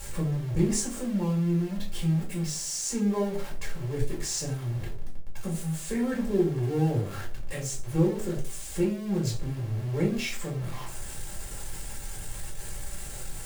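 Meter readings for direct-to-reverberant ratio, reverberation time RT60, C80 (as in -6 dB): -3.0 dB, 0.40 s, 13.0 dB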